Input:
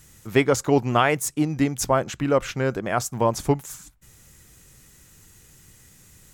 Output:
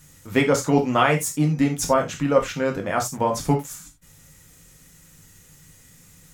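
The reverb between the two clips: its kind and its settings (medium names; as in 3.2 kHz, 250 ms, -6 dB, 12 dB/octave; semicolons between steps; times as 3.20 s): gated-style reverb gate 110 ms falling, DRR 1.5 dB; trim -1.5 dB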